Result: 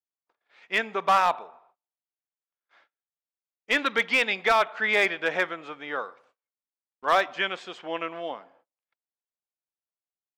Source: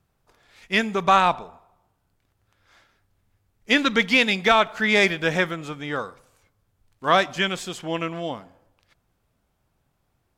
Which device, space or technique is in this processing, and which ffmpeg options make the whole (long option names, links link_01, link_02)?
walkie-talkie: -af "highpass=450,lowpass=2900,asoftclip=type=hard:threshold=-12.5dB,agate=range=-30dB:threshold=-59dB:ratio=16:detection=peak,volume=-1.5dB"